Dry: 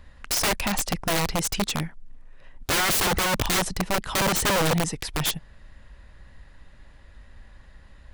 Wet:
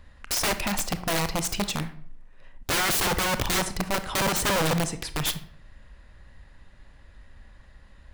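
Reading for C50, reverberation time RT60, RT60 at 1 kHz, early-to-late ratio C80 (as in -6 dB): 14.0 dB, 0.55 s, 0.55 s, 17.0 dB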